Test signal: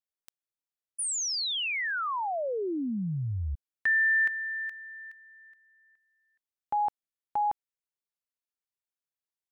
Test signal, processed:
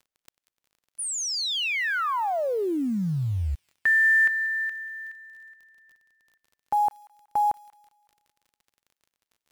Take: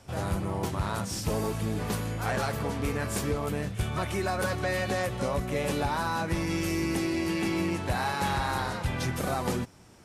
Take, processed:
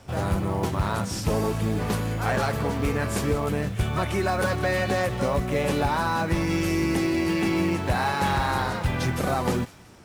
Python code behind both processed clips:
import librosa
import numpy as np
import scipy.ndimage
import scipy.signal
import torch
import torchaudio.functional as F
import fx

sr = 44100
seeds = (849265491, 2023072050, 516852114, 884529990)

y = fx.high_shelf(x, sr, hz=4700.0, db=-5.5)
y = fx.dmg_crackle(y, sr, seeds[0], per_s=29.0, level_db=-51.0)
y = fx.quant_float(y, sr, bits=4)
y = fx.echo_wet_highpass(y, sr, ms=186, feedback_pct=39, hz=1700.0, wet_db=-16)
y = y * 10.0 ** (5.0 / 20.0)